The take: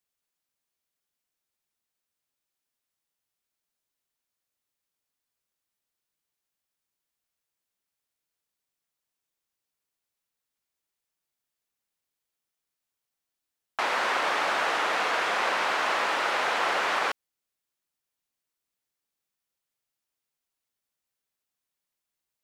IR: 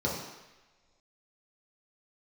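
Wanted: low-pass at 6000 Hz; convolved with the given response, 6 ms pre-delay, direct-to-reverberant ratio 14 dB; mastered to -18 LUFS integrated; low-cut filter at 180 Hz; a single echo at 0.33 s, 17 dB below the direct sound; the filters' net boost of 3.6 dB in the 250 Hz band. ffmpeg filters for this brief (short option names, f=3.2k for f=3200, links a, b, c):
-filter_complex "[0:a]highpass=180,lowpass=6k,equalizer=f=250:t=o:g=6,aecho=1:1:330:0.141,asplit=2[a][b];[1:a]atrim=start_sample=2205,adelay=6[c];[b][c]afir=irnorm=-1:irlink=0,volume=-23dB[d];[a][d]amix=inputs=2:normalize=0,volume=7.5dB"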